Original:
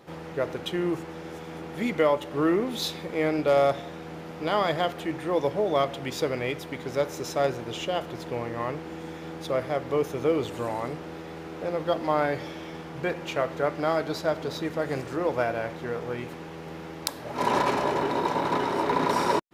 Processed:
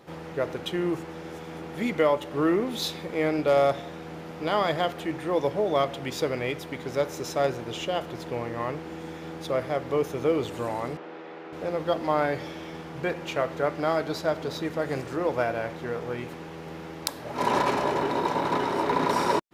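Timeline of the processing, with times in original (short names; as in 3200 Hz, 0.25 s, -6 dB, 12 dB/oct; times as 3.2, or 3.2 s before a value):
10.97–11.53 BPF 330–3000 Hz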